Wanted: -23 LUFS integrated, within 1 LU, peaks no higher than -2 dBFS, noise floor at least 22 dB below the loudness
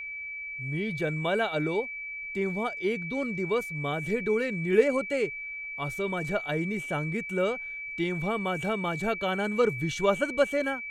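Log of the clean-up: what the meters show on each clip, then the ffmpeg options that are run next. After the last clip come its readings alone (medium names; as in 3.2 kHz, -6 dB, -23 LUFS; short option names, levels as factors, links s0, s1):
steady tone 2.3 kHz; tone level -35 dBFS; loudness -29.0 LUFS; peak level -9.5 dBFS; loudness target -23.0 LUFS
-> -af "bandreject=f=2300:w=30"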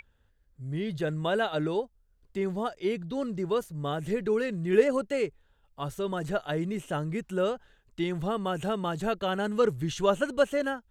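steady tone not found; loudness -30.0 LUFS; peak level -9.5 dBFS; loudness target -23.0 LUFS
-> -af "volume=2.24"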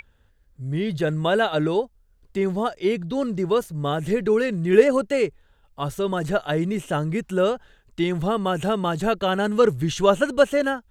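loudness -23.0 LUFS; peak level -2.5 dBFS; noise floor -60 dBFS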